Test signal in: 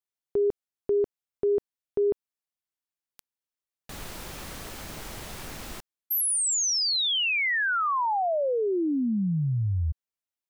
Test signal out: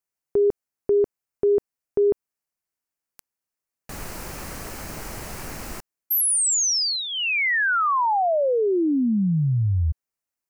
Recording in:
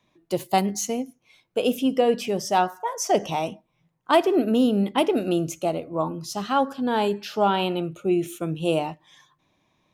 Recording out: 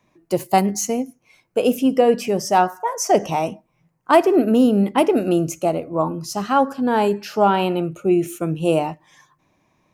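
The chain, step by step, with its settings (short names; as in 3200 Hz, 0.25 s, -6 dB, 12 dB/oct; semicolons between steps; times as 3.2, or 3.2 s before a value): bell 3500 Hz -10.5 dB 0.48 oct; gain +5 dB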